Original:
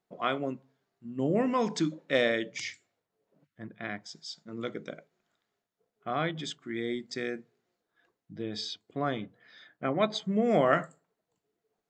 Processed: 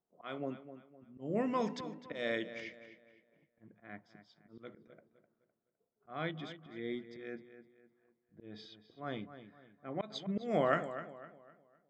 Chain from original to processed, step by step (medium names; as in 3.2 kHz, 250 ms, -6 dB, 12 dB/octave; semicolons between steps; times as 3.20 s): level-controlled noise filter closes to 1 kHz, open at -22 dBFS; slow attack 200 ms; filtered feedback delay 255 ms, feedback 37%, low-pass 3.9 kHz, level -12 dB; trim -6 dB